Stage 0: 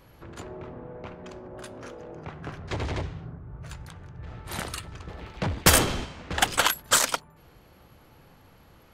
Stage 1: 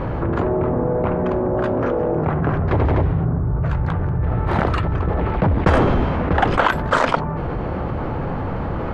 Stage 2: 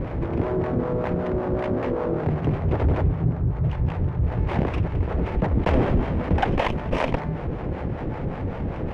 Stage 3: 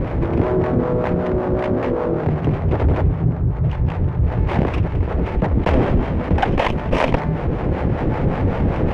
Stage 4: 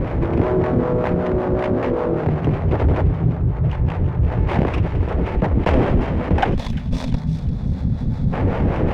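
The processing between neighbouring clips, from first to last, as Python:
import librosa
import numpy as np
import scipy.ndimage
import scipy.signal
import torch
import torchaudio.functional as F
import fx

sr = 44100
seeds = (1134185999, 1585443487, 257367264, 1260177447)

y1 = scipy.signal.sosfilt(scipy.signal.butter(2, 1200.0, 'lowpass', fs=sr, output='sos'), x)
y1 = fx.env_flatten(y1, sr, amount_pct=70)
y1 = F.gain(torch.from_numpy(y1), 4.5).numpy()
y2 = fx.lower_of_two(y1, sr, delay_ms=0.33)
y2 = fx.lowpass(y2, sr, hz=1400.0, slope=6)
y2 = fx.harmonic_tremolo(y2, sr, hz=5.2, depth_pct=70, crossover_hz=490.0)
y3 = fx.rider(y2, sr, range_db=10, speed_s=2.0)
y3 = F.gain(torch.from_numpy(y3), 5.0).numpy()
y4 = fx.spec_box(y3, sr, start_s=6.54, length_s=1.79, low_hz=260.0, high_hz=3300.0, gain_db=-16)
y4 = fx.echo_wet_highpass(y4, sr, ms=347, feedback_pct=33, hz=2500.0, wet_db=-11.0)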